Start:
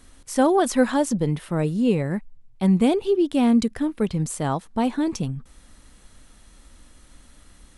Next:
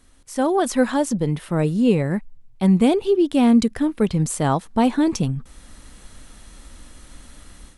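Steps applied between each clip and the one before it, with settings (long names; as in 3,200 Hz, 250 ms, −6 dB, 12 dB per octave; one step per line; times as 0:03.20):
automatic gain control gain up to 11.5 dB
level −4.5 dB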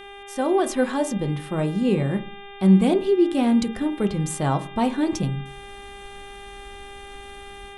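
hum with harmonics 400 Hz, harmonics 9, −38 dBFS −2 dB per octave
convolution reverb RT60 0.40 s, pre-delay 3 ms, DRR 7.5 dB
level −4 dB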